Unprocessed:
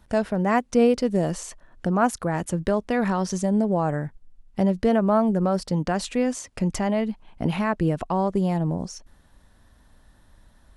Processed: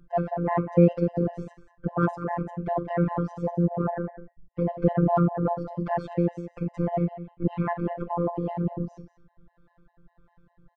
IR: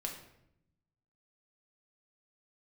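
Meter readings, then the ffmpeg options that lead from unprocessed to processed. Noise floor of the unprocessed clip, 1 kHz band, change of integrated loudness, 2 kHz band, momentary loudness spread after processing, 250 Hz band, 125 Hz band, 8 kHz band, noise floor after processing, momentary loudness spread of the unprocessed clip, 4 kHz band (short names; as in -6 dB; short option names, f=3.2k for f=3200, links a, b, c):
-57 dBFS, -3.0 dB, -3.0 dB, -8.5 dB, 11 LU, -4.0 dB, +0.5 dB, under -30 dB, -70 dBFS, 11 LU, under -15 dB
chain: -filter_complex "[0:a]lowpass=1.3k,acrossover=split=510[a][b];[a]aeval=exprs='val(0)*(1-0.5/2+0.5/2*cos(2*PI*1.6*n/s))':c=same[c];[b]aeval=exprs='val(0)*(1-0.5/2-0.5/2*cos(2*PI*1.6*n/s))':c=same[d];[c][d]amix=inputs=2:normalize=0,aecho=1:1:187:0.211,asplit=2[e][f];[1:a]atrim=start_sample=2205,atrim=end_sample=4410[g];[f][g]afir=irnorm=-1:irlink=0,volume=1.5dB[h];[e][h]amix=inputs=2:normalize=0,aeval=exprs='val(0)*sin(2*PI*61*n/s)':c=same,aeval=exprs='0.668*(cos(1*acos(clip(val(0)/0.668,-1,1)))-cos(1*PI/2))+0.00596*(cos(7*acos(clip(val(0)/0.668,-1,1)))-cos(7*PI/2))':c=same,bandreject=f=370.8:t=h:w=4,bandreject=f=741.6:t=h:w=4,bandreject=f=1.1124k:t=h:w=4,bandreject=f=1.4832k:t=h:w=4,bandreject=f=1.854k:t=h:w=4,bandreject=f=2.2248k:t=h:w=4,bandreject=f=2.5956k:t=h:w=4,bandreject=f=2.9664k:t=h:w=4,bandreject=f=3.3372k:t=h:w=4,bandreject=f=3.708k:t=h:w=4,bandreject=f=4.0788k:t=h:w=4,bandreject=f=4.4496k:t=h:w=4,bandreject=f=4.8204k:t=h:w=4,bandreject=f=5.1912k:t=h:w=4,bandreject=f=5.562k:t=h:w=4,bandreject=f=5.9328k:t=h:w=4,bandreject=f=6.3036k:t=h:w=4,bandreject=f=6.6744k:t=h:w=4,bandreject=f=7.0452k:t=h:w=4,bandreject=f=7.416k:t=h:w=4,bandreject=f=7.7868k:t=h:w=4,bandreject=f=8.1576k:t=h:w=4,bandreject=f=8.5284k:t=h:w=4,bandreject=f=8.8992k:t=h:w=4,bandreject=f=9.27k:t=h:w=4,bandreject=f=9.6408k:t=h:w=4,bandreject=f=10.0116k:t=h:w=4,bandreject=f=10.3824k:t=h:w=4,bandreject=f=10.7532k:t=h:w=4,bandreject=f=11.124k:t=h:w=4,bandreject=f=11.4948k:t=h:w=4,afftfilt=real='hypot(re,im)*cos(PI*b)':imag='0':win_size=1024:overlap=0.75,afftfilt=real='re*gt(sin(2*PI*5*pts/sr)*(1-2*mod(floor(b*sr/1024/520),2)),0)':imag='im*gt(sin(2*PI*5*pts/sr)*(1-2*mod(floor(b*sr/1024/520),2)),0)':win_size=1024:overlap=0.75,volume=4dB"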